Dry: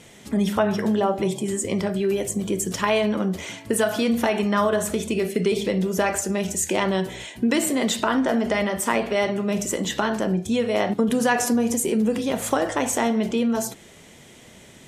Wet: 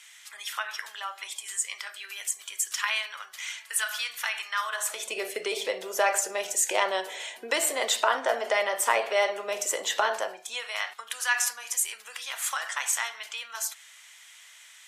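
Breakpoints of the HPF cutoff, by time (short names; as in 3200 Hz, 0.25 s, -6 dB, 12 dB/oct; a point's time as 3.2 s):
HPF 24 dB/oct
4.63 s 1300 Hz
5.17 s 540 Hz
10.11 s 540 Hz
10.83 s 1200 Hz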